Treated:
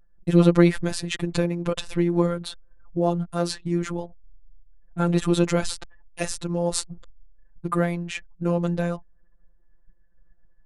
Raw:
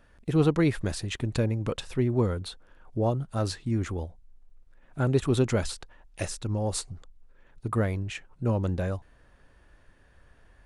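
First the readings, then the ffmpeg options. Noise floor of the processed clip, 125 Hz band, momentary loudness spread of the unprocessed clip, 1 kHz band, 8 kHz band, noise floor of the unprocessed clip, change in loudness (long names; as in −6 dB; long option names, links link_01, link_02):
−55 dBFS, +1.5 dB, 14 LU, +5.0 dB, +5.0 dB, −59 dBFS, +4.5 dB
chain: -af "afftfilt=real='hypot(re,im)*cos(PI*b)':imag='0':win_size=1024:overlap=0.75,anlmdn=0.000631,volume=8.5dB"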